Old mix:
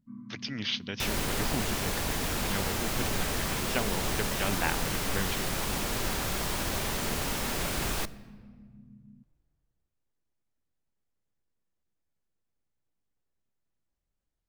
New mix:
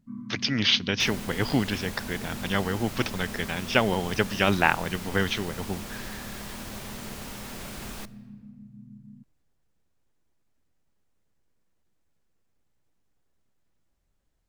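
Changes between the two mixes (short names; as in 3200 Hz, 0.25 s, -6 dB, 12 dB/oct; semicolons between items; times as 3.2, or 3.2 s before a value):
speech +10.0 dB; first sound +6.0 dB; second sound -8.0 dB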